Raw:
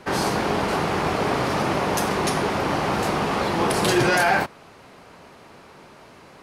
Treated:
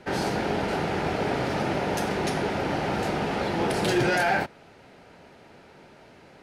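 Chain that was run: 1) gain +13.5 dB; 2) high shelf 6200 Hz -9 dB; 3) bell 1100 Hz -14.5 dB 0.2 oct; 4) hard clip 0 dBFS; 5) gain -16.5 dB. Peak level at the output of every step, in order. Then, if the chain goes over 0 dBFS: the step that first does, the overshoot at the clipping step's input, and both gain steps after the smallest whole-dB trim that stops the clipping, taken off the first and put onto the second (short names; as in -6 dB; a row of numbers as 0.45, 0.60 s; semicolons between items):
+6.0, +5.5, +5.0, 0.0, -16.5 dBFS; step 1, 5.0 dB; step 1 +8.5 dB, step 5 -11.5 dB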